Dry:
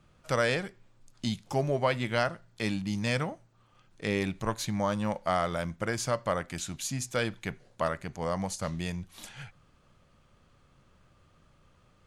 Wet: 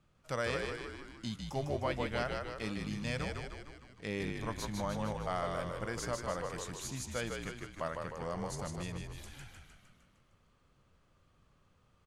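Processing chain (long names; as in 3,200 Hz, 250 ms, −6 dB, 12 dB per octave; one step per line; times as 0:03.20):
echo with shifted repeats 153 ms, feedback 58%, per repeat −50 Hz, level −4 dB
level −8.5 dB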